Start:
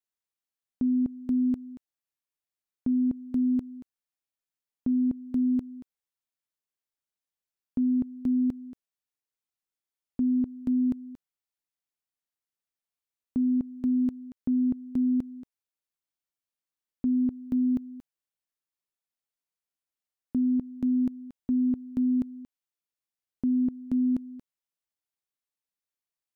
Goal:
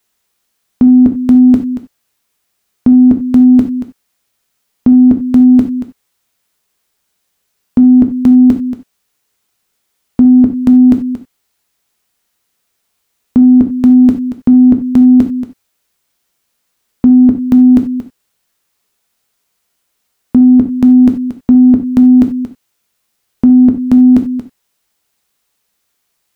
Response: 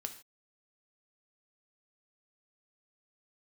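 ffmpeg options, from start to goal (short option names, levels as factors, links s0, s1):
-filter_complex "[1:a]atrim=start_sample=2205,atrim=end_sample=4410[s0];[0:a][s0]afir=irnorm=-1:irlink=0,apsyclip=28.2,volume=0.841"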